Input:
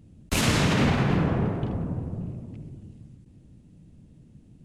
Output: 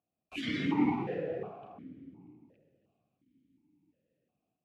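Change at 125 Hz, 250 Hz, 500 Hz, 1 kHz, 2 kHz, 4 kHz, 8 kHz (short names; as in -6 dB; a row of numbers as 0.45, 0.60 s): -19.0 dB, -7.0 dB, -8.0 dB, -9.0 dB, -11.5 dB, -13.5 dB, under -25 dB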